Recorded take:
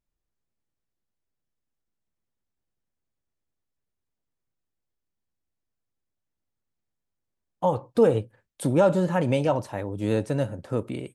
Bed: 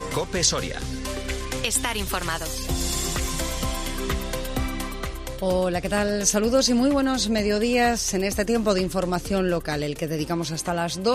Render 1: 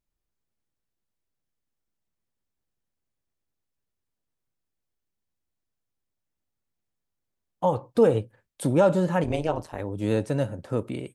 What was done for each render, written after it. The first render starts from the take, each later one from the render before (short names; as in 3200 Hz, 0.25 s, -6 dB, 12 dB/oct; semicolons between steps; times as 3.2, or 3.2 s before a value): 9.24–9.8 AM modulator 160 Hz, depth 85%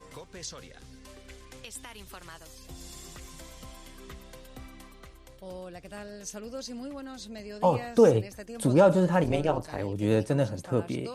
add bed -19 dB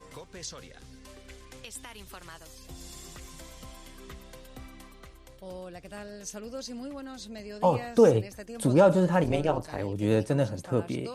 nothing audible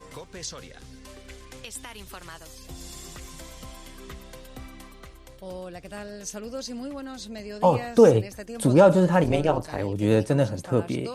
gain +4 dB